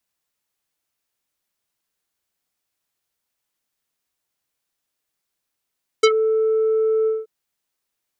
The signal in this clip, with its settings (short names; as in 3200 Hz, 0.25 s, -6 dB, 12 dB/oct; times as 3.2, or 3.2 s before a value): synth note square A4 24 dB/oct, low-pass 850 Hz, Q 1.5, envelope 3.5 oct, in 0.10 s, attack 8.4 ms, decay 0.06 s, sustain -9.5 dB, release 0.19 s, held 1.04 s